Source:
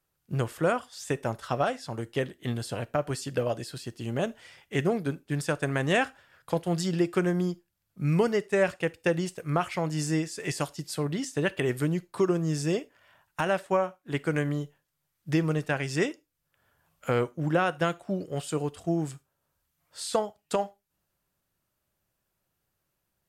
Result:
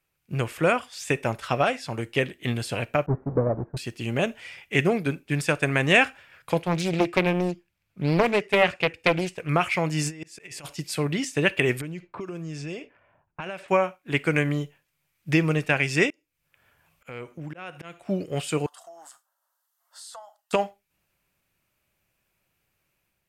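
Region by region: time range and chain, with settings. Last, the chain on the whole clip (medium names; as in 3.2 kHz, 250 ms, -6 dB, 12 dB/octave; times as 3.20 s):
3.06–3.77 s: square wave that keeps the level + expander -36 dBFS + Gaussian low-pass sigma 9.4 samples
6.63–9.49 s: treble shelf 7.1 kHz -10 dB + loudspeaker Doppler distortion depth 0.89 ms
10.03–10.66 s: compressor with a negative ratio -33 dBFS, ratio -0.5 + slow attack 549 ms
11.81–13.68 s: level-controlled noise filter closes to 530 Hz, open at -22 dBFS + band-stop 1.9 kHz, Q 22 + compression 8:1, threshold -35 dBFS
16.10–18.06 s: slow attack 348 ms + compression 2.5:1, threshold -42 dBFS
18.66–20.53 s: high-pass 540 Hz 24 dB/octave + compression 3:1, threshold -45 dBFS + static phaser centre 1 kHz, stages 4
whole clip: level rider gain up to 3.5 dB; peaking EQ 2.4 kHz +11.5 dB 0.53 oct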